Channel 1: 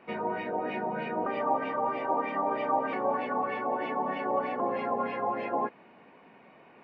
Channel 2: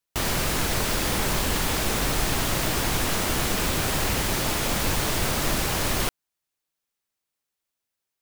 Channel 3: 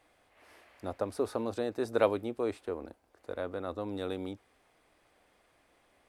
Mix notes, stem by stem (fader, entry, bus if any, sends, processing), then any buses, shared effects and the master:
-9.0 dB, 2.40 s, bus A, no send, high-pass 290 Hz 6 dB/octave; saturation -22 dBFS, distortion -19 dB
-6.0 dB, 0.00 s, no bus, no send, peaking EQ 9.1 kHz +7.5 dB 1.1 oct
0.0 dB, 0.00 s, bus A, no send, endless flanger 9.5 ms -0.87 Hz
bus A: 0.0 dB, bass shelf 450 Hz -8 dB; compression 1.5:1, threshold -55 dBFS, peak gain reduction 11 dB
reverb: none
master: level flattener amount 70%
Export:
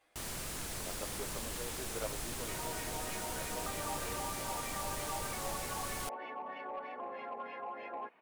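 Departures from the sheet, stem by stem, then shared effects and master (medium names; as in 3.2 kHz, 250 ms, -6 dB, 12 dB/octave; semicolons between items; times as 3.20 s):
stem 1 -9.0 dB -> -0.5 dB; stem 2 -6.0 dB -> -18.0 dB; master: missing level flattener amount 70%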